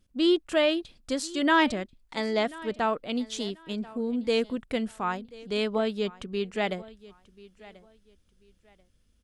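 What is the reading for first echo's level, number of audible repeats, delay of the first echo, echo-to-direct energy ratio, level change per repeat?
−20.5 dB, 2, 1,037 ms, −20.0 dB, −12.0 dB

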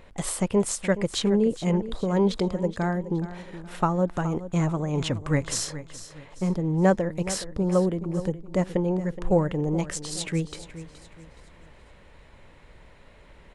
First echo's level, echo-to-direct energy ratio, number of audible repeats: −14.0 dB, −13.5 dB, 3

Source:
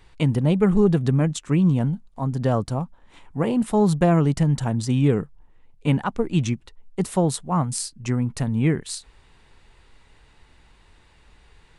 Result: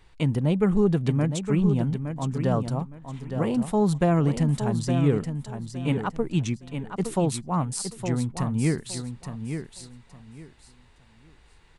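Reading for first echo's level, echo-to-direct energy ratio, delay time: −8.0 dB, −8.0 dB, 864 ms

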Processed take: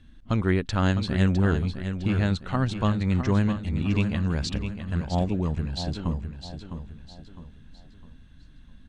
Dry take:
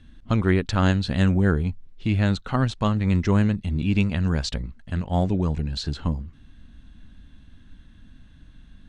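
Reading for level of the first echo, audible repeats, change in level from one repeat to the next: −9.0 dB, 4, −8.0 dB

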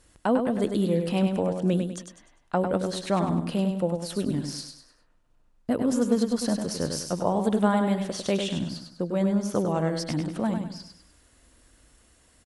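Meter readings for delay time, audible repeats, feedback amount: 100 ms, 4, 37%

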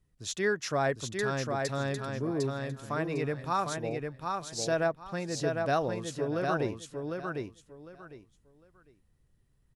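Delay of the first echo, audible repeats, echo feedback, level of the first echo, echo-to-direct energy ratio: 753 ms, 3, 22%, −4.0 dB, −4.0 dB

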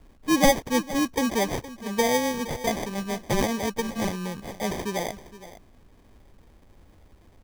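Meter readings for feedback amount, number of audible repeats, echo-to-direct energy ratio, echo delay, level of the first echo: repeats not evenly spaced, 1, −16.0 dB, 466 ms, −16.0 dB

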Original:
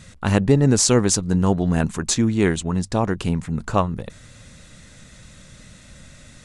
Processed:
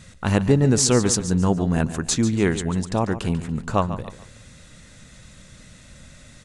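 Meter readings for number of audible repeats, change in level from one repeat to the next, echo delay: 3, −9.5 dB, 143 ms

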